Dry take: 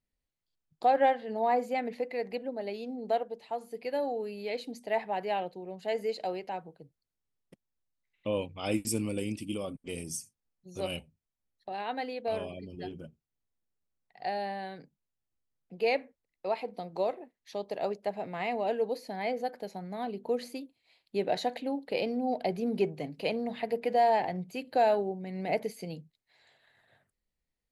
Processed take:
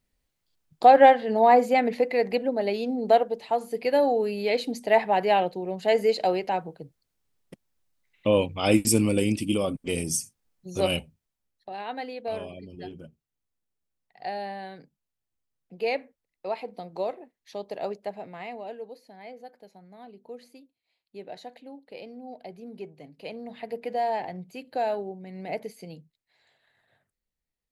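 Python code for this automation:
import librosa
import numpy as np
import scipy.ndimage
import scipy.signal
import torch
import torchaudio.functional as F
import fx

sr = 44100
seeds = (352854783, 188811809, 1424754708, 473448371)

y = fx.gain(x, sr, db=fx.line((10.93, 10.0), (11.69, 0.5), (17.96, 0.5), (18.98, -11.0), (22.88, -11.0), (23.75, -2.5)))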